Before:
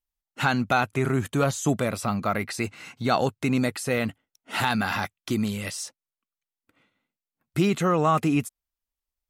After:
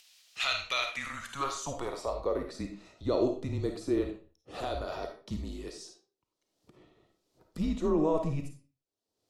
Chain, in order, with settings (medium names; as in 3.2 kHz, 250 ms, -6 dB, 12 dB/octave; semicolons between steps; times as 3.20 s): band-pass sweep 2.5 kHz -> 520 Hz, 0.87–2.45 s; upward compressor, threshold -44 dBFS; resonant high shelf 3.2 kHz +12.5 dB, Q 1.5; frequency shift -150 Hz; on a send: reverberation RT60 0.40 s, pre-delay 10 ms, DRR 4 dB